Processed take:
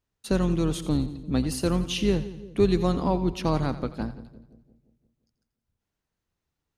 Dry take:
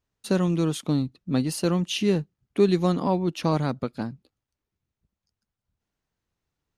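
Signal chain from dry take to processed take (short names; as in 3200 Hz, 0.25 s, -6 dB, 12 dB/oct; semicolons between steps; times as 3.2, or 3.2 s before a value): octaver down 2 oct, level -6 dB; split-band echo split 520 Hz, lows 0.173 s, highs 86 ms, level -13.5 dB; gain -1.5 dB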